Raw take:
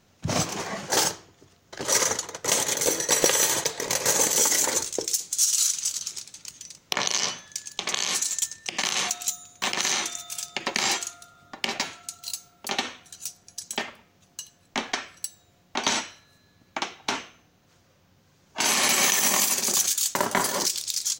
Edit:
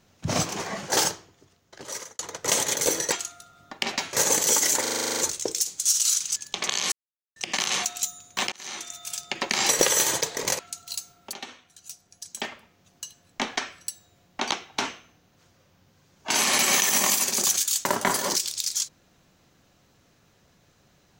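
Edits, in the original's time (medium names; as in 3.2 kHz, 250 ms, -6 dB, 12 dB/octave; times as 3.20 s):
1.10–2.19 s: fade out
3.12–4.02 s: swap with 10.94–11.95 s
4.71 s: stutter 0.04 s, 10 plays
5.89–7.61 s: delete
8.17–8.61 s: mute
9.77–10.38 s: fade in
12.69–14.40 s: fade in, from -13 dB
15.87–16.81 s: delete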